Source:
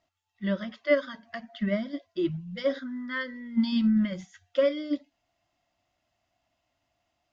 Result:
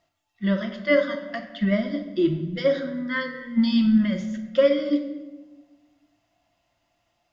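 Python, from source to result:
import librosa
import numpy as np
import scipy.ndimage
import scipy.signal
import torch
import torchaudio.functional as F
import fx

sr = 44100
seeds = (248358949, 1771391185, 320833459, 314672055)

y = fx.room_shoebox(x, sr, seeds[0], volume_m3=700.0, walls='mixed', distance_m=0.78)
y = F.gain(torch.from_numpy(y), 4.5).numpy()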